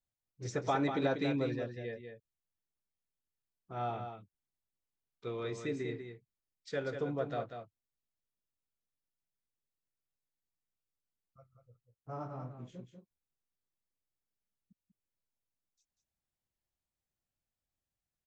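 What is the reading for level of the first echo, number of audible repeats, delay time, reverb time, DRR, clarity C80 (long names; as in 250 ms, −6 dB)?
−7.5 dB, 1, 192 ms, no reverb audible, no reverb audible, no reverb audible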